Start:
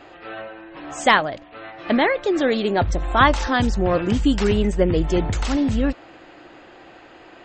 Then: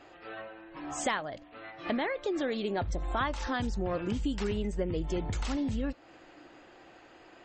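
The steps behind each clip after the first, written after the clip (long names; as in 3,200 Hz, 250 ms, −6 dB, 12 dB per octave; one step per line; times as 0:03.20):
noise reduction from a noise print of the clip's start 6 dB
downward compressor 3 to 1, threshold −28 dBFS, peak gain reduction 14 dB
level −3.5 dB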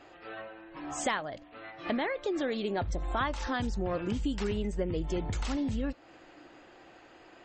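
no processing that can be heard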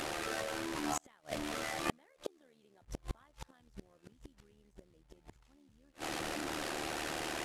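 linear delta modulator 64 kbit/s, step −36 dBFS
amplitude modulation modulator 76 Hz, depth 55%
gate with flip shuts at −26 dBFS, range −37 dB
level +6 dB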